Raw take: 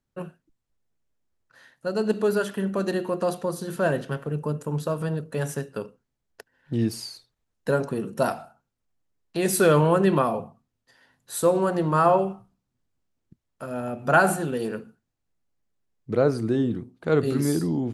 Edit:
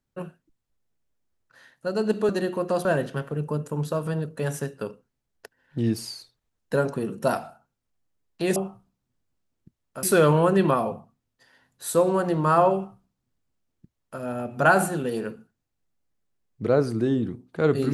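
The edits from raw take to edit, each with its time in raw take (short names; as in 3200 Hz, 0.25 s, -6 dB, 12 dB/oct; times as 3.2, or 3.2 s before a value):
2.29–2.81 cut
3.37–3.8 cut
12.21–13.68 copy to 9.51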